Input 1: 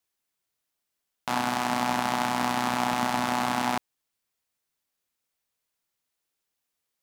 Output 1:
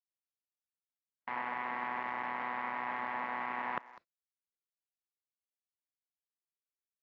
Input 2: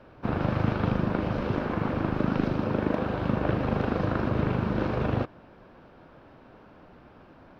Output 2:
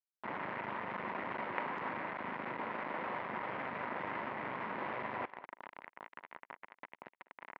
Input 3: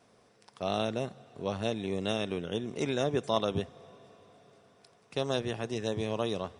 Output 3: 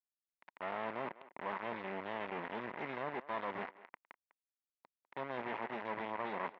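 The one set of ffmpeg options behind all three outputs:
-filter_complex "[0:a]areverse,acompressor=threshold=0.02:ratio=12,areverse,aeval=exprs='(tanh(22.4*val(0)+0.65)-tanh(0.65))/22.4':c=same,aeval=exprs='(mod(18.8*val(0)+1,2)-1)/18.8':c=same,acrusher=bits=5:dc=4:mix=0:aa=0.000001,highpass=280,equalizer=f=310:t=q:w=4:g=-4,equalizer=f=450:t=q:w=4:g=-4,equalizer=f=970:t=q:w=4:g=8,equalizer=f=2000:t=q:w=4:g=7,lowpass=f=2400:w=0.5412,lowpass=f=2400:w=1.3066,asplit=2[s0][s1];[s1]adelay=200,highpass=300,lowpass=3400,asoftclip=type=hard:threshold=0.0141,volume=0.141[s2];[s0][s2]amix=inputs=2:normalize=0,volume=2.99" -ar 16000 -c:a aac -b:a 64k

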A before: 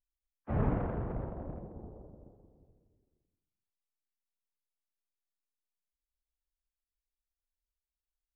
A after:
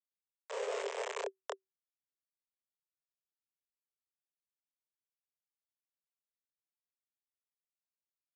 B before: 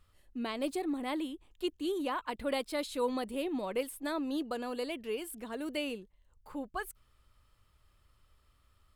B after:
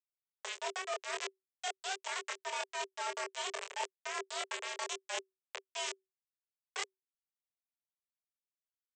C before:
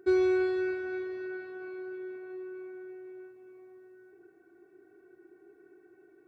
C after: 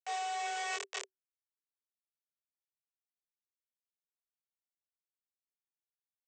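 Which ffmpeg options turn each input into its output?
-filter_complex "[0:a]aresample=16000,acrusher=bits=4:mix=0:aa=0.000001,aresample=44100,equalizer=f=400:t=o:w=0.67:g=-6,equalizer=f=1000:t=o:w=0.67:g=-5,equalizer=f=4000:t=o:w=0.67:g=-6,afreqshift=380,acontrast=69,asplit=2[s0][s1];[s1]adelay=25,volume=0.562[s2];[s0][s2]amix=inputs=2:normalize=0,areverse,acompressor=threshold=0.0112:ratio=6,areverse,volume=1.33"

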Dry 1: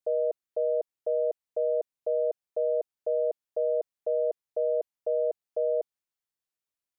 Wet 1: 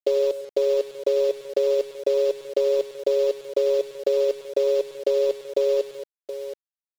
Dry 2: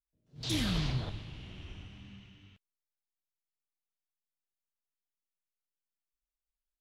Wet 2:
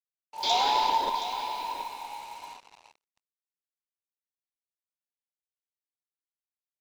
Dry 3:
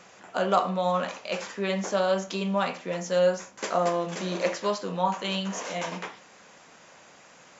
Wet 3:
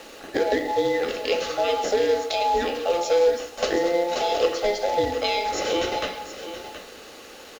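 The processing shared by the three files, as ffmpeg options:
-af "afftfilt=real='real(if(between(b,1,1008),(2*floor((b-1)/48)+1)*48-b,b),0)':imag='imag(if(between(b,1,1008),(2*floor((b-1)/48)+1)*48-b,b),0)*if(between(b,1,1008),-1,1)':win_size=2048:overlap=0.75,acrusher=bits=3:mode=log:mix=0:aa=0.000001,acompressor=threshold=0.0316:ratio=6,equalizer=f=1900:t=o:w=0.67:g=-10,aeval=exprs='0.0891*(cos(1*acos(clip(val(0)/0.0891,-1,1)))-cos(1*PI/2))+0.000562*(cos(6*acos(clip(val(0)/0.0891,-1,1)))-cos(6*PI/2))':c=same,aresample=16000,aresample=44100,equalizer=f=125:t=o:w=1:g=-8,equalizer=f=250:t=o:w=1:g=5,equalizer=f=500:t=o:w=1:g=9,equalizer=f=1000:t=o:w=1:g=4,equalizer=f=2000:t=o:w=1:g=9,equalizer=f=4000:t=o:w=1:g=8,aecho=1:1:99|137|180|723:0.133|0.126|0.126|0.266,acrusher=bits=7:mix=0:aa=0.5,volume=1.33"

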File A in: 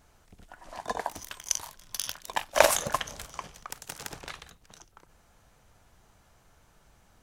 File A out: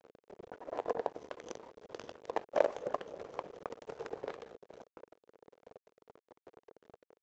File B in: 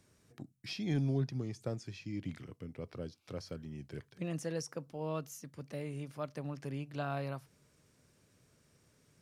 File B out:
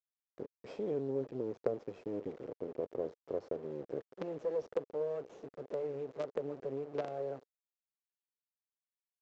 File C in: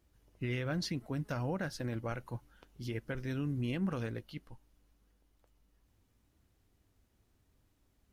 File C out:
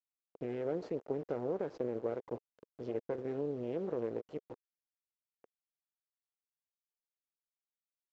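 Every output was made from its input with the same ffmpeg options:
-af "acompressor=threshold=0.0112:ratio=3,aresample=16000,acrusher=bits=6:dc=4:mix=0:aa=0.000001,aresample=44100,bandpass=f=460:t=q:w=3.4:csg=0,volume=7.5"

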